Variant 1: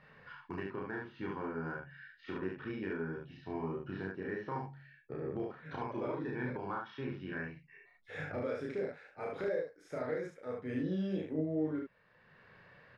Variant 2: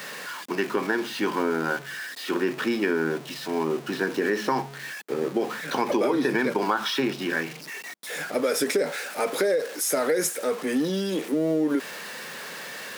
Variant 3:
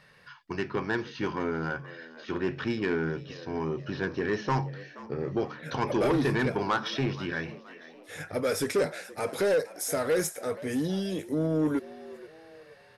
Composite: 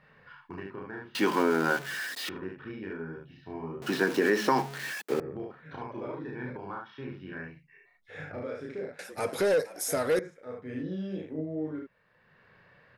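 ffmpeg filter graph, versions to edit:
-filter_complex "[1:a]asplit=2[a][b];[0:a]asplit=4[c][d][e][f];[c]atrim=end=1.152[g];[a]atrim=start=1.148:end=2.292[h];[d]atrim=start=2.288:end=3.822[i];[b]atrim=start=3.818:end=5.202[j];[e]atrim=start=5.198:end=8.992[k];[2:a]atrim=start=8.988:end=10.192[l];[f]atrim=start=10.188[m];[g][h]acrossfade=d=0.004:c1=hsin:c2=hsin[n];[n][i]acrossfade=d=0.004:c1=hsin:c2=hsin[o];[o][j]acrossfade=d=0.004:c1=hsin:c2=hsin[p];[p][k]acrossfade=d=0.004:c1=hsin:c2=hsin[q];[q][l]acrossfade=d=0.004:c1=hsin:c2=hsin[r];[r][m]acrossfade=d=0.004:c1=hsin:c2=hsin"

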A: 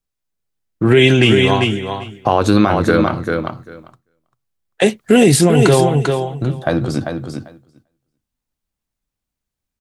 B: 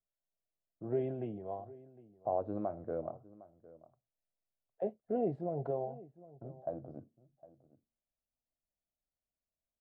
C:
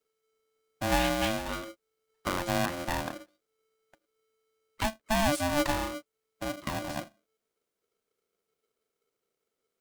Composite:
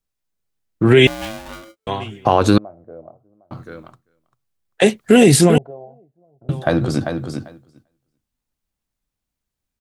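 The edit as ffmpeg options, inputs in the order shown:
-filter_complex "[1:a]asplit=2[a][b];[0:a]asplit=4[c][d][e][f];[c]atrim=end=1.072[g];[2:a]atrim=start=1.068:end=1.872[h];[d]atrim=start=1.868:end=2.582[i];[a]atrim=start=2.578:end=3.512[j];[e]atrim=start=3.508:end=5.582[k];[b]atrim=start=5.578:end=6.492[l];[f]atrim=start=6.488[m];[g][h]acrossfade=d=0.004:c1=hsin:c2=hsin[n];[n][i]acrossfade=d=0.004:c1=hsin:c2=hsin[o];[o][j]acrossfade=d=0.004:c1=hsin:c2=hsin[p];[p][k]acrossfade=d=0.004:c1=hsin:c2=hsin[q];[q][l]acrossfade=d=0.004:c1=hsin:c2=hsin[r];[r][m]acrossfade=d=0.004:c1=hsin:c2=hsin"

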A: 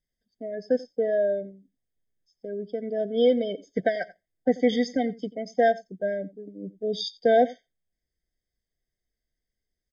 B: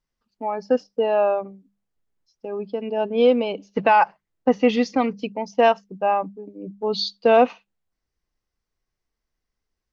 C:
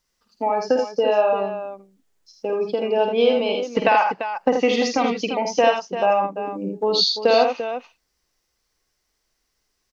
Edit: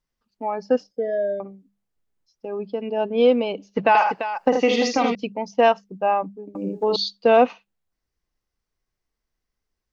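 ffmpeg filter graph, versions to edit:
-filter_complex "[2:a]asplit=2[a][b];[1:a]asplit=4[c][d][e][f];[c]atrim=end=0.912[g];[0:a]atrim=start=0.908:end=1.402[h];[d]atrim=start=1.398:end=3.952[i];[a]atrim=start=3.948:end=5.152[j];[e]atrim=start=5.148:end=6.552[k];[b]atrim=start=6.548:end=6.962[l];[f]atrim=start=6.958[m];[g][h]acrossfade=d=0.004:c1=hsin:c2=hsin[n];[n][i]acrossfade=d=0.004:c1=hsin:c2=hsin[o];[o][j]acrossfade=d=0.004:c1=hsin:c2=hsin[p];[p][k]acrossfade=d=0.004:c1=hsin:c2=hsin[q];[q][l]acrossfade=d=0.004:c1=hsin:c2=hsin[r];[r][m]acrossfade=d=0.004:c1=hsin:c2=hsin"

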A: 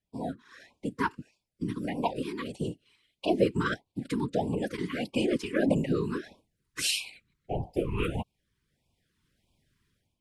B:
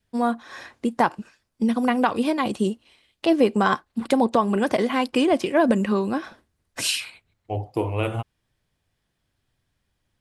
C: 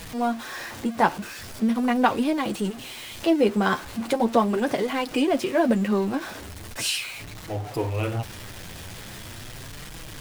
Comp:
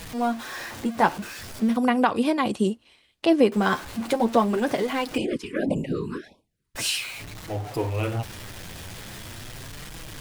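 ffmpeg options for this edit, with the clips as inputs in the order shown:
-filter_complex "[2:a]asplit=3[a][b][c];[a]atrim=end=1.772[d];[1:a]atrim=start=1.768:end=3.522[e];[b]atrim=start=3.518:end=5.182[f];[0:a]atrim=start=5.178:end=6.752[g];[c]atrim=start=6.748[h];[d][e]acrossfade=d=0.004:c1=hsin:c2=hsin[i];[i][f]acrossfade=d=0.004:c1=hsin:c2=hsin[j];[j][g]acrossfade=d=0.004:c1=hsin:c2=hsin[k];[k][h]acrossfade=d=0.004:c1=hsin:c2=hsin"

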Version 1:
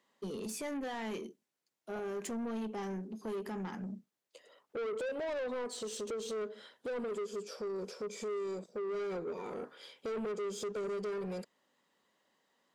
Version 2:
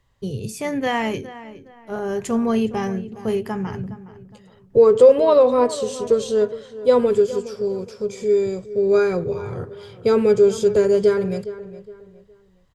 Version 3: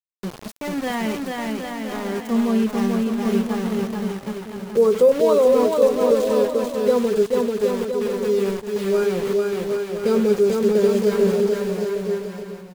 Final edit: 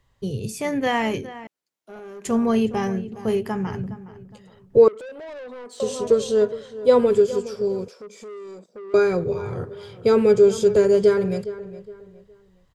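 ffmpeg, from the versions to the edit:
-filter_complex "[0:a]asplit=3[a][b][c];[1:a]asplit=4[d][e][f][g];[d]atrim=end=1.472[h];[a]atrim=start=1.468:end=2.252[i];[e]atrim=start=2.248:end=4.882[j];[b]atrim=start=4.878:end=5.802[k];[f]atrim=start=5.798:end=7.882[l];[c]atrim=start=7.878:end=8.942[m];[g]atrim=start=8.938[n];[h][i]acrossfade=d=0.004:c1=hsin:c2=hsin[o];[o][j]acrossfade=d=0.004:c1=hsin:c2=hsin[p];[p][k]acrossfade=d=0.004:c1=hsin:c2=hsin[q];[q][l]acrossfade=d=0.004:c1=hsin:c2=hsin[r];[r][m]acrossfade=d=0.004:c1=hsin:c2=hsin[s];[s][n]acrossfade=d=0.004:c1=hsin:c2=hsin"

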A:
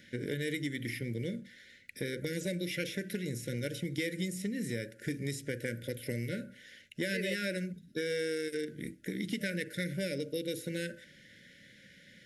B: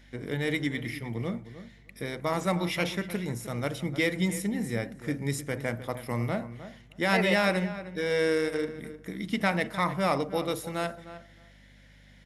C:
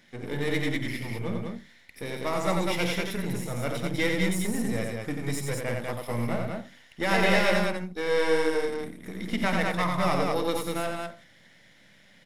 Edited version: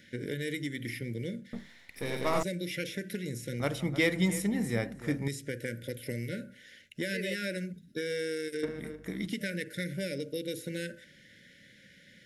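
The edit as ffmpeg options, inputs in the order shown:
-filter_complex "[1:a]asplit=2[a][b];[0:a]asplit=4[c][d][e][f];[c]atrim=end=1.532[g];[2:a]atrim=start=1.528:end=2.432[h];[d]atrim=start=2.428:end=3.602[i];[a]atrim=start=3.598:end=5.282[j];[e]atrim=start=5.278:end=8.632[k];[b]atrim=start=8.628:end=9.272[l];[f]atrim=start=9.268[m];[g][h]acrossfade=d=0.004:c1=hsin:c2=hsin[n];[n][i]acrossfade=d=0.004:c1=hsin:c2=hsin[o];[o][j]acrossfade=d=0.004:c1=hsin:c2=hsin[p];[p][k]acrossfade=d=0.004:c1=hsin:c2=hsin[q];[q][l]acrossfade=d=0.004:c1=hsin:c2=hsin[r];[r][m]acrossfade=d=0.004:c1=hsin:c2=hsin"

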